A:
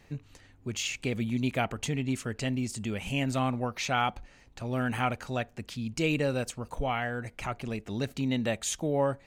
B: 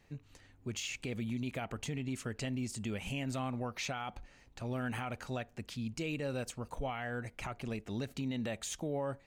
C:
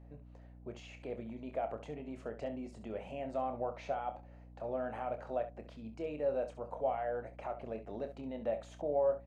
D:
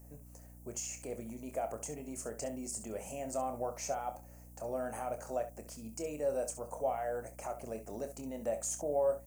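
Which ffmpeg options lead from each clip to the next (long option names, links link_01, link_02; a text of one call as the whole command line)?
ffmpeg -i in.wav -af "deesser=0.65,alimiter=level_in=0.5dB:limit=-24dB:level=0:latency=1:release=96,volume=-0.5dB,dynaudnorm=framelen=180:gausssize=3:maxgain=4dB,volume=-8dB" out.wav
ffmpeg -i in.wav -filter_complex "[0:a]bandpass=frequency=620:width_type=q:width=3:csg=0,asplit=2[link_01][link_02];[link_02]aecho=0:1:27|67:0.355|0.251[link_03];[link_01][link_03]amix=inputs=2:normalize=0,aeval=exprs='val(0)+0.000891*(sin(2*PI*60*n/s)+sin(2*PI*2*60*n/s)/2+sin(2*PI*3*60*n/s)/3+sin(2*PI*4*60*n/s)/4+sin(2*PI*5*60*n/s)/5)':channel_layout=same,volume=8dB" out.wav
ffmpeg -i in.wav -af "aexciter=amount=15.4:drive=9.7:freq=5900" out.wav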